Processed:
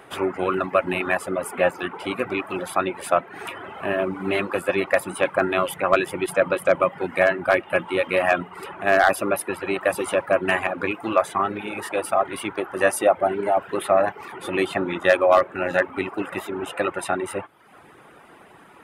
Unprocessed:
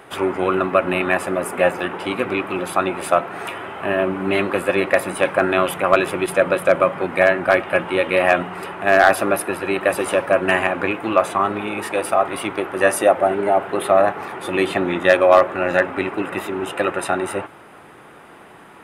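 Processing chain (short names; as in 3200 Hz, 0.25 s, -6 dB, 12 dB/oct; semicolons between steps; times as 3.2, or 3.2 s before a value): reverb removal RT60 0.72 s; gain -3 dB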